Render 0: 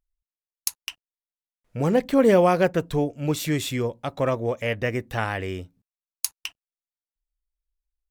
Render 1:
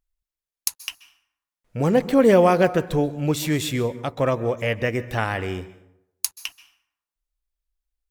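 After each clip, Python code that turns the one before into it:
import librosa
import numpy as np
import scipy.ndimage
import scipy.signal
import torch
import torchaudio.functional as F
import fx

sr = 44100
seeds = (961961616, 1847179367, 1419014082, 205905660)

y = fx.rev_plate(x, sr, seeds[0], rt60_s=0.79, hf_ratio=0.6, predelay_ms=120, drr_db=15.5)
y = y * 10.0 ** (2.0 / 20.0)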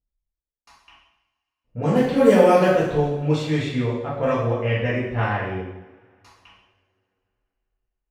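y = fx.env_lowpass(x, sr, base_hz=570.0, full_db=-13.5)
y = fx.rev_double_slope(y, sr, seeds[1], early_s=0.75, late_s=3.0, knee_db=-26, drr_db=-8.0)
y = y * 10.0 ** (-7.5 / 20.0)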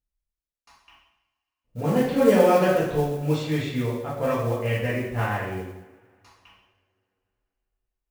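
y = fx.mod_noise(x, sr, seeds[2], snr_db=25)
y = y * 10.0 ** (-3.0 / 20.0)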